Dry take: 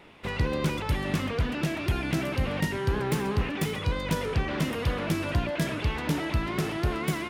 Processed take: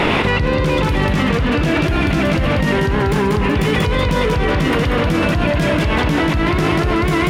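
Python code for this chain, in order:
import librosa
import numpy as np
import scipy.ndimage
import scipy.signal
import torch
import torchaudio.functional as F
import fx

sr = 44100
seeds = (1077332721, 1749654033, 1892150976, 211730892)

y = fx.high_shelf(x, sr, hz=7000.0, db=-11.5)
y = fx.echo_feedback(y, sr, ms=188, feedback_pct=29, wet_db=-4)
y = fx.env_flatten(y, sr, amount_pct=100)
y = y * librosa.db_to_amplitude(5.0)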